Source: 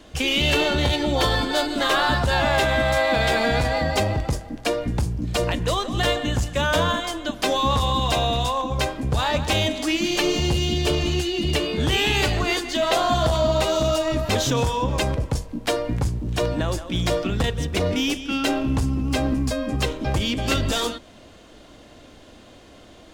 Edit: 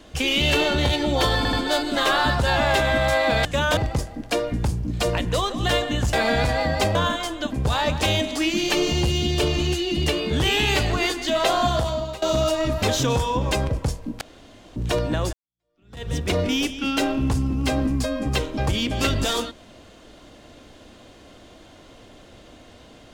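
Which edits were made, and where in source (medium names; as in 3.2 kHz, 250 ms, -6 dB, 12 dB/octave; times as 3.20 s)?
1.37 s: stutter 0.08 s, 3 plays
3.29–4.11 s: swap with 6.47–6.79 s
7.36–8.99 s: delete
13.11–13.69 s: fade out linear, to -19 dB
15.68–16.23 s: room tone
16.80–17.56 s: fade in exponential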